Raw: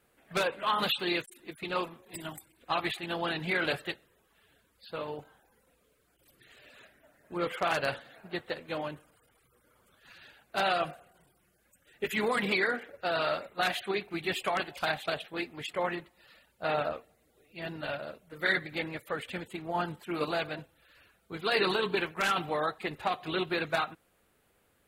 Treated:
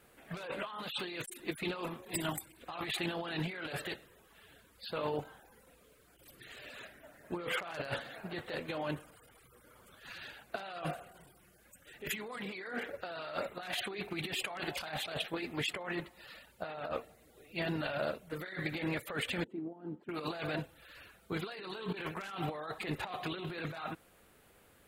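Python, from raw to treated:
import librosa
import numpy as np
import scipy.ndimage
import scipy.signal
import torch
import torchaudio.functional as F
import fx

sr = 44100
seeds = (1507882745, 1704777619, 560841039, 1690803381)

y = fx.over_compress(x, sr, threshold_db=-39.0, ratio=-1.0)
y = fx.bandpass_q(y, sr, hz=290.0, q=2.5, at=(19.44, 20.09))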